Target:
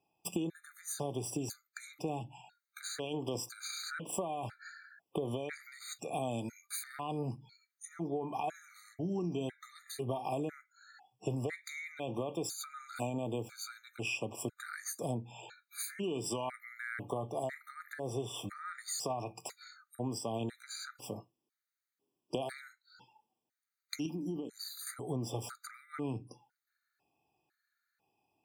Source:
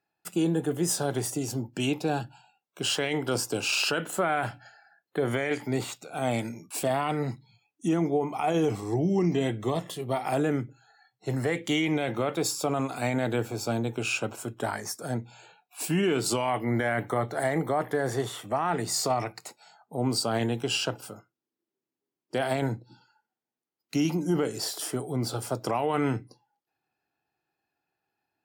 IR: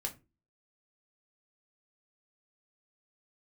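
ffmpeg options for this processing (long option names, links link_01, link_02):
-filter_complex "[0:a]acompressor=threshold=-37dB:ratio=10,asettb=1/sr,asplit=3[link_01][link_02][link_03];[link_01]atrim=end=24.064[link_04];[link_02]atrim=start=24.06:end=24.87,asetpts=PTS-STARTPTS,afade=type=in:duration=0.004:curve=qsin,afade=type=out:start_time=0.806:duration=0.004:curve=qsin,equalizer=frequency=125:width_type=o:width=1:gain=-11,equalizer=frequency=250:width_type=o:width=1:gain=6,equalizer=frequency=500:width_type=o:width=1:gain=-8,equalizer=frequency=1000:width_type=o:width=1:gain=-6,equalizer=frequency=2000:width_type=o:width=1:gain=-9,equalizer=frequency=8000:width_type=o:width=1:gain=-10[link_05];[link_03]atrim=start=24.866[link_06];[link_04][link_05]acrossfade=duration=0.004:curve1=hsin:curve2=qsin[link_07];[link_07][link_06]acrossfade=duration=0.004:curve1=qsin:curve2=hsin,afftfilt=real='re*gt(sin(2*PI*1*pts/sr)*(1-2*mod(floor(b*sr/1024/1200),2)),0)':imag='im*gt(sin(2*PI*1*pts/sr)*(1-2*mod(floor(b*sr/1024/1200),2)),0)':win_size=1024:overlap=0.75,volume=4.5dB"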